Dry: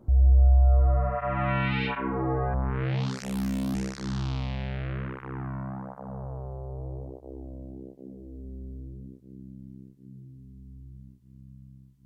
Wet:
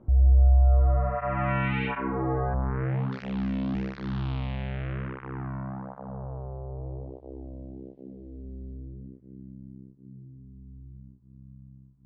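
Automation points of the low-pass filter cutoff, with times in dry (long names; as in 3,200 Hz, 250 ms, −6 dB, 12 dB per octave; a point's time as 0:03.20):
low-pass filter 24 dB per octave
2,800 Hz
from 0:02.40 1,900 Hz
from 0:03.12 3,400 Hz
from 0:06.11 2,100 Hz
from 0:06.87 3,700 Hz
from 0:08.73 2,000 Hz
from 0:09.51 1,300 Hz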